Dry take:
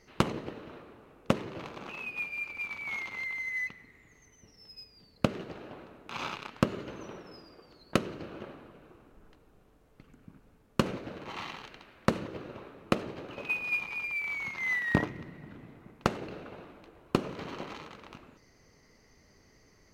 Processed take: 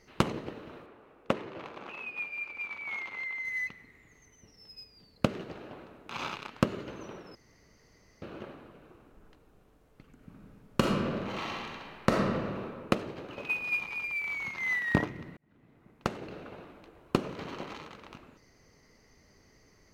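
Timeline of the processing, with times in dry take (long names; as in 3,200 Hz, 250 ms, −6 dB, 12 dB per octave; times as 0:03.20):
0:00.86–0:03.45: bass and treble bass −8 dB, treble −9 dB
0:07.35–0:08.22: fill with room tone
0:10.14–0:12.60: thrown reverb, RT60 1.7 s, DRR −1.5 dB
0:15.37–0:16.46: fade in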